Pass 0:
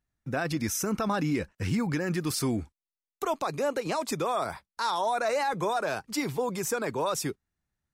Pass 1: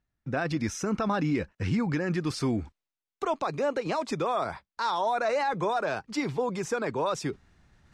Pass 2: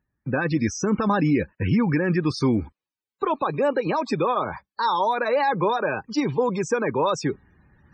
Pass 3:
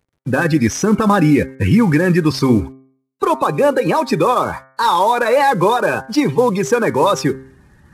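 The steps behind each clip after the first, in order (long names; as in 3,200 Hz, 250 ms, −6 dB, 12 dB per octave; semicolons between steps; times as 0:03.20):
reversed playback; upward compression, threshold −41 dBFS; reversed playback; high-frequency loss of the air 99 metres; level +1 dB
spectral peaks only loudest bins 64; notch comb filter 690 Hz; level +7 dB
variable-slope delta modulation 64 kbit/s; hum removal 132.5 Hz, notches 17; level +8.5 dB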